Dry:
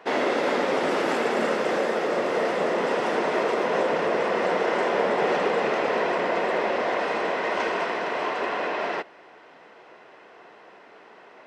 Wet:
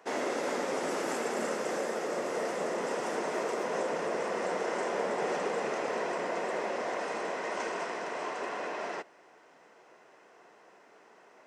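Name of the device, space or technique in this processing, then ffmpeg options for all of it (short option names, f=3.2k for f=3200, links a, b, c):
budget condenser microphone: -af "highpass=90,highshelf=f=5.1k:t=q:w=1.5:g=9.5,volume=-8.5dB"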